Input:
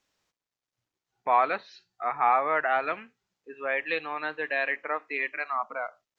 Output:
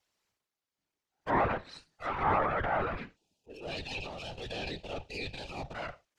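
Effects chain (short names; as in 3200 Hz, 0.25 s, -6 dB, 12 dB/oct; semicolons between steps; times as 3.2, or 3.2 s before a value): minimum comb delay 5 ms; spectral gain 3.16–5.74, 900–2400 Hz -17 dB; whisperiser; transient shaper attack -4 dB, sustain +8 dB; treble ducked by the level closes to 1500 Hz, closed at -26 dBFS; gain -2 dB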